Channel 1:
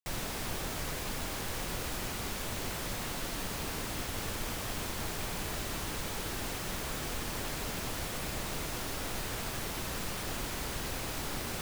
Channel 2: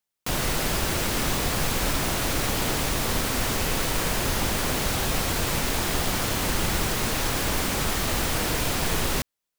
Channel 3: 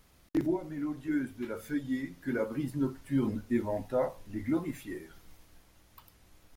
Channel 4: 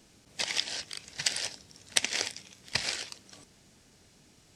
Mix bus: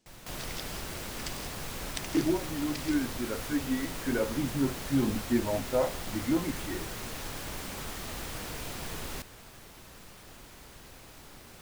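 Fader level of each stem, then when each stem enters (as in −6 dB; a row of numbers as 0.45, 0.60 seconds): −13.5, −13.5, +2.0, −13.5 decibels; 0.00, 0.00, 1.80, 0.00 seconds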